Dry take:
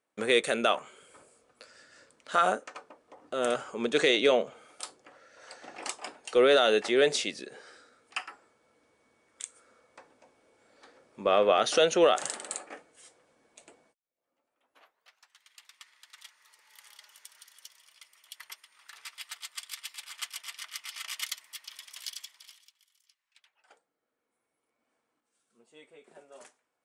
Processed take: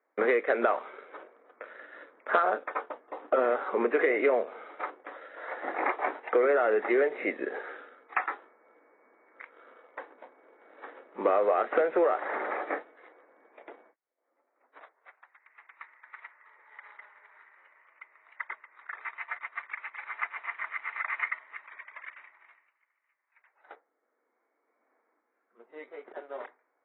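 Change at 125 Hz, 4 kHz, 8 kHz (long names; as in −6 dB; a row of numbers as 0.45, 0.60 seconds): below −10 dB, below −20 dB, below −40 dB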